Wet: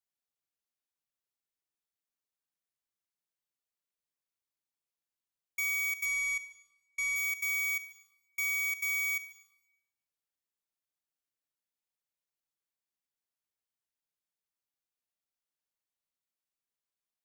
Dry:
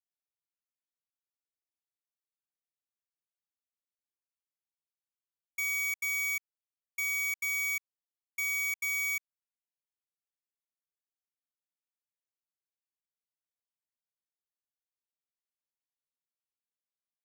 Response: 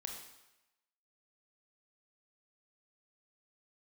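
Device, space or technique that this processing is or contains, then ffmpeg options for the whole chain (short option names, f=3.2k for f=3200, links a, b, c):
compressed reverb return: -filter_complex "[0:a]asettb=1/sr,asplit=3[a][b][c];[a]atrim=end=6.054[d];[b]atrim=start=6.05:end=7.16,asetpts=PTS-STARTPTS,afade=t=in:d=0.004:c=qsin,afade=t=out:st=1.106:d=0.004:c=qsin,lowpass=f=10k:w=0.5412,lowpass=f=10k:w=1.3066[e];[c]atrim=start=7.156[f];[d][e]acrossfade=d=0.004:c1=hsin:c2=qsin[g];[g][f]acrossfade=d=0.004:c1=qsin:c2=hsin,asplit=2[h][i];[1:a]atrim=start_sample=2205[j];[i][j]afir=irnorm=-1:irlink=0,acompressor=threshold=-34dB:ratio=6,volume=-4dB[k];[h][k]amix=inputs=2:normalize=0,volume=-2.5dB"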